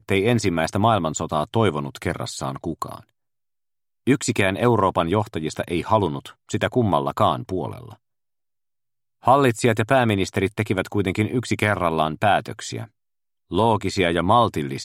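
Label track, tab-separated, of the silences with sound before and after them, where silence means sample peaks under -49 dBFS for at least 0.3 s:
3.090000	4.070000	silence
7.960000	9.230000	silence
12.880000	13.500000	silence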